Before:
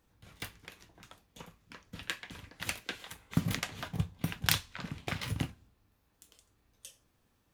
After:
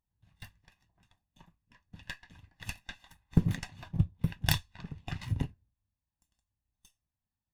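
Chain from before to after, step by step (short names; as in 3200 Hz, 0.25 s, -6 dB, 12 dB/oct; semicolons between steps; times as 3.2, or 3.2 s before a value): minimum comb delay 1.1 ms; spectral expander 1.5:1; gain -1 dB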